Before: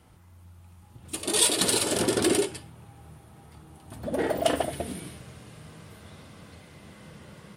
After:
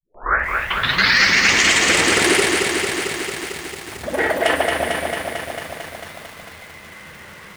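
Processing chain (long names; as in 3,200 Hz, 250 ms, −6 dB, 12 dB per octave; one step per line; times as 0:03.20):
turntable start at the beginning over 2.24 s
noise gate with hold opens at −42 dBFS
octave-band graphic EQ 125/250/1,000/2,000 Hz −7/−4/+3/+12 dB
boost into a limiter +10.5 dB
feedback echo at a low word length 224 ms, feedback 80%, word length 6 bits, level −4 dB
level −5 dB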